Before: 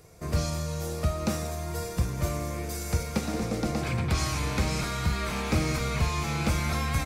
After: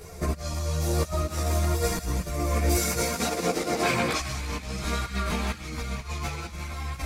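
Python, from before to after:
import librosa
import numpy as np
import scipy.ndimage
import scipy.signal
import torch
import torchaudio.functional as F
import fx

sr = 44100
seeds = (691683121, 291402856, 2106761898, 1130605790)

y = fx.highpass(x, sr, hz=fx.line((2.75, 140.0), (4.18, 310.0)), slope=12, at=(2.75, 4.18), fade=0.02)
y = fx.over_compress(y, sr, threshold_db=-34.0, ratio=-0.5)
y = fx.echo_wet_highpass(y, sr, ms=170, feedback_pct=63, hz=1400.0, wet_db=-11)
y = fx.vibrato(y, sr, rate_hz=5.5, depth_cents=7.8)
y = fx.chorus_voices(y, sr, voices=6, hz=0.81, base_ms=14, depth_ms=2.9, mix_pct=55)
y = y * 10.0 ** (8.5 / 20.0)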